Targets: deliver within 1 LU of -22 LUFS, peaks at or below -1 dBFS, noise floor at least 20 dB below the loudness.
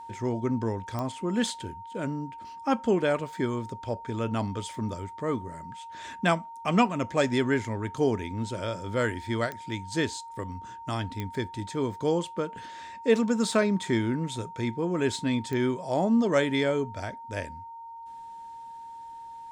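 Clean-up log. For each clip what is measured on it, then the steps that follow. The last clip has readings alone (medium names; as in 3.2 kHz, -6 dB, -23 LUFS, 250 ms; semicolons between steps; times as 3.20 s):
clicks found 4; steady tone 920 Hz; tone level -40 dBFS; loudness -29.0 LUFS; peak level -9.5 dBFS; loudness target -22.0 LUFS
-> de-click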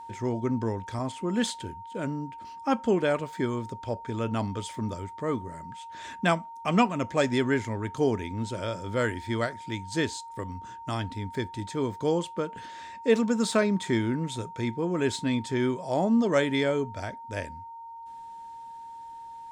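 clicks found 0; steady tone 920 Hz; tone level -40 dBFS
-> band-stop 920 Hz, Q 30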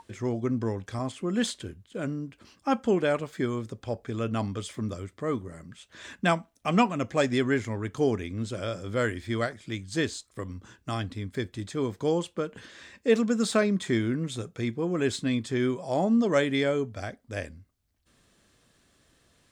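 steady tone not found; loudness -29.0 LUFS; peak level -9.5 dBFS; loudness target -22.0 LUFS
-> trim +7 dB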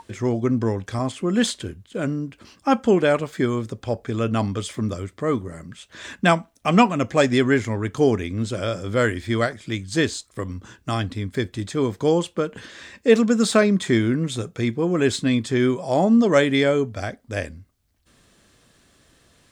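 loudness -22.0 LUFS; peak level -2.5 dBFS; noise floor -61 dBFS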